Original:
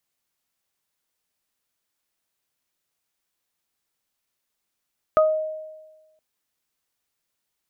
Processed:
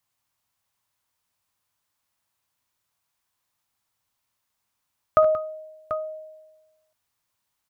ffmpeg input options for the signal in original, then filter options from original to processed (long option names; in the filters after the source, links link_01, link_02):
-f lavfi -i "aevalsrc='0.237*pow(10,-3*t/1.25)*sin(2*PI*625*t)+0.178*pow(10,-3*t/0.24)*sin(2*PI*1250*t)':duration=1.02:sample_rate=44100"
-af "equalizer=frequency=100:width_type=o:width=0.67:gain=10,equalizer=frequency=400:width_type=o:width=0.67:gain=-5,equalizer=frequency=1000:width_type=o:width=0.67:gain=7,aecho=1:1:59|74|180|739:0.126|0.237|0.211|0.282"